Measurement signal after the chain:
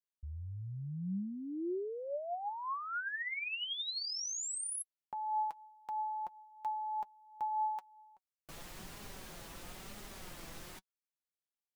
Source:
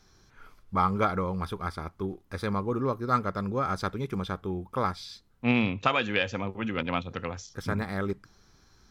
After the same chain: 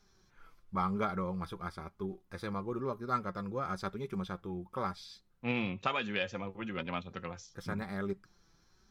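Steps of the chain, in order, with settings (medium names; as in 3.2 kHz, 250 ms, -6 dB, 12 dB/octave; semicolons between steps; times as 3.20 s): flange 1 Hz, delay 4.8 ms, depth 1.3 ms, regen +45%; trim -3.5 dB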